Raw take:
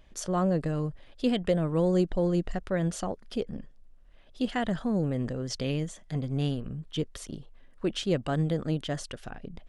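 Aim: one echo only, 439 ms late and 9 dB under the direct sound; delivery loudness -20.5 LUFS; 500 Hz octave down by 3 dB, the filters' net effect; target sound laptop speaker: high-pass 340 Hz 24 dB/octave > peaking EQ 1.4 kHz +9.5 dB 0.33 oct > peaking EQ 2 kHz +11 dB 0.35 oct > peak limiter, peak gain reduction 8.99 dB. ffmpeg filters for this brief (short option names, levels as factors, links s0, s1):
-af "highpass=f=340:w=0.5412,highpass=f=340:w=1.3066,equalizer=f=500:t=o:g=-3,equalizer=f=1400:t=o:w=0.33:g=9.5,equalizer=f=2000:t=o:w=0.35:g=11,aecho=1:1:439:0.355,volume=5.96,alimiter=limit=0.422:level=0:latency=1"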